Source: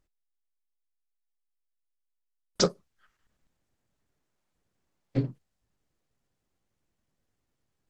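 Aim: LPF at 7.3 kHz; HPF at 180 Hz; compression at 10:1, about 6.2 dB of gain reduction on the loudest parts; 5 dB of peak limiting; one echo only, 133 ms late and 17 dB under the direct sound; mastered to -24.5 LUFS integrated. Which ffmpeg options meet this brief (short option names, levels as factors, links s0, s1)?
-af "highpass=180,lowpass=7300,acompressor=threshold=0.0562:ratio=10,alimiter=limit=0.0891:level=0:latency=1,aecho=1:1:133:0.141,volume=5.01"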